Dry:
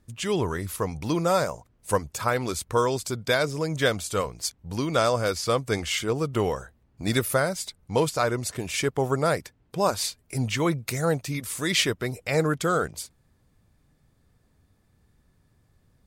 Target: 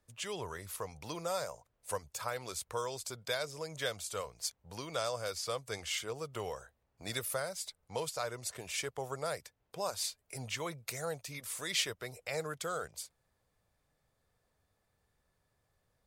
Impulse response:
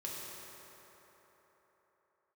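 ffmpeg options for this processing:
-filter_complex "[0:a]lowshelf=f=390:t=q:w=1.5:g=-8.5,acrossover=split=160|3000[a][b][c];[b]acompressor=threshold=-39dB:ratio=1.5[d];[a][d][c]amix=inputs=3:normalize=0,volume=-7.5dB"

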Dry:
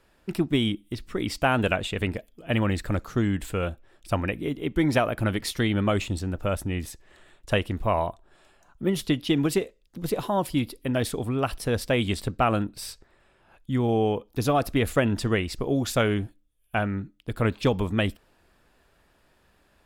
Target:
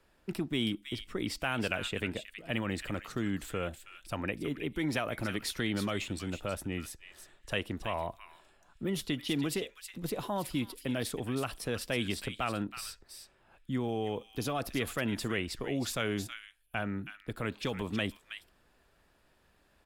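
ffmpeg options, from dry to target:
-filter_complex "[0:a]acrossover=split=150|1500[a][b][c];[a]acompressor=threshold=-39dB:ratio=6[d];[b]alimiter=limit=-21dB:level=0:latency=1[e];[c]aecho=1:1:321:0.447[f];[d][e][f]amix=inputs=3:normalize=0,volume=-5dB"

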